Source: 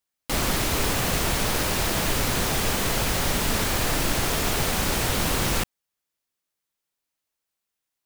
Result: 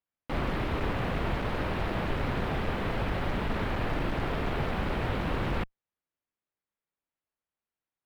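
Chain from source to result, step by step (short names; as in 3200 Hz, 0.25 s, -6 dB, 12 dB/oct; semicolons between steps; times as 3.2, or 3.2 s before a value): air absorption 490 m; one-sided clip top -22.5 dBFS; gain -2.5 dB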